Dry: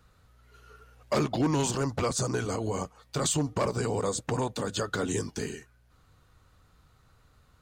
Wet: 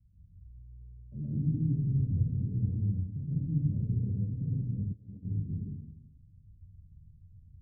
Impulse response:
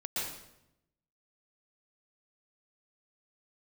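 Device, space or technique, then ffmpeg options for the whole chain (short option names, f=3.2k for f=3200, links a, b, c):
club heard from the street: -filter_complex "[0:a]alimiter=limit=-21.5dB:level=0:latency=1:release=86,lowpass=f=190:w=0.5412,lowpass=f=190:w=1.3066[a];[1:a]atrim=start_sample=2205[b];[a][b]afir=irnorm=-1:irlink=0,asplit=3[c][d][e];[c]afade=t=out:st=4.92:d=0.02[f];[d]agate=range=-33dB:threshold=-27dB:ratio=3:detection=peak,afade=t=in:st=4.92:d=0.02,afade=t=out:st=5.44:d=0.02[g];[e]afade=t=in:st=5.44:d=0.02[h];[f][g][h]amix=inputs=3:normalize=0,equalizer=f=85:w=1.4:g=6"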